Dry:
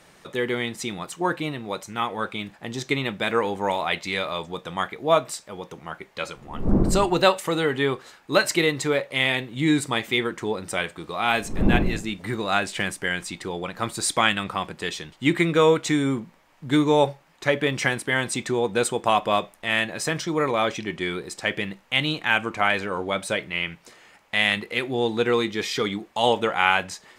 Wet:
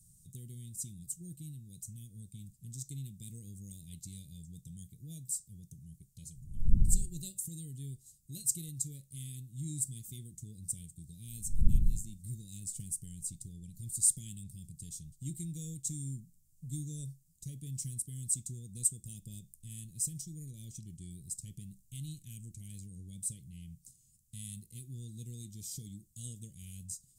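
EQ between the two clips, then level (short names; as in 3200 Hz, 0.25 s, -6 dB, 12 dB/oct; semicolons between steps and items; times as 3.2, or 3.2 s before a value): Chebyshev band-stop 130–8000 Hz, order 3; dynamic EQ 120 Hz, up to -8 dB, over -48 dBFS, Q 0.85; +1.0 dB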